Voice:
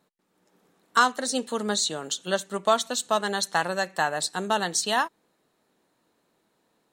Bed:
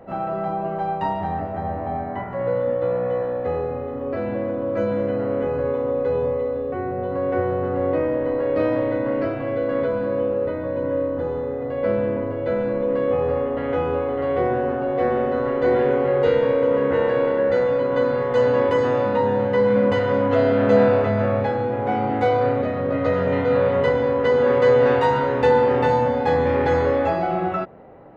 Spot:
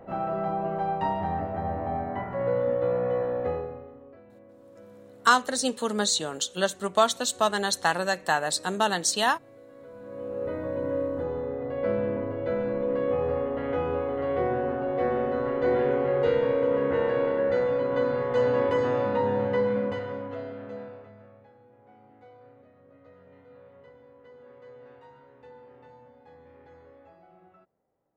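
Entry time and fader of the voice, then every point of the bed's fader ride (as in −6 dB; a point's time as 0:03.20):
4.30 s, +0.5 dB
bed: 0:03.46 −3.5 dB
0:04.24 −27.5 dB
0:09.76 −27.5 dB
0:10.53 −5.5 dB
0:19.53 −5.5 dB
0:21.39 −33.5 dB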